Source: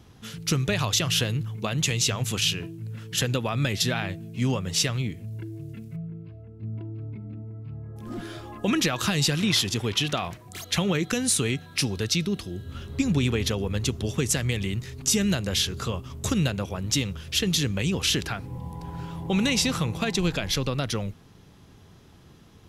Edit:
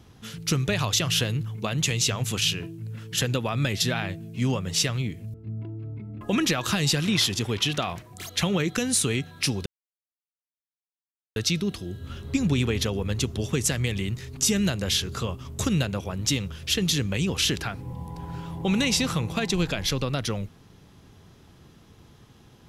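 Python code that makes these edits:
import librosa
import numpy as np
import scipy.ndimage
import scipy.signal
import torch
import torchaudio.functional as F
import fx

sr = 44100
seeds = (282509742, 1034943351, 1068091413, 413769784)

y = fx.edit(x, sr, fx.cut(start_s=5.34, length_s=1.16),
    fx.cut(start_s=7.37, length_s=1.19),
    fx.insert_silence(at_s=12.01, length_s=1.7), tone=tone)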